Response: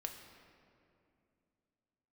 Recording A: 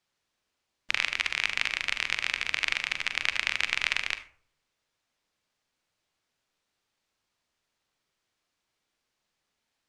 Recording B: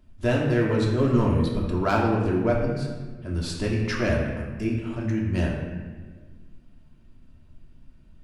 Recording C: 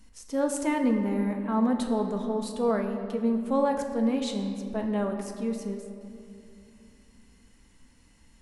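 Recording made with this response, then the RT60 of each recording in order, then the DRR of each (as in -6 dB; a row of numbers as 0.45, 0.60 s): C; 0.55, 1.5, 2.6 s; 9.5, -3.5, 3.5 dB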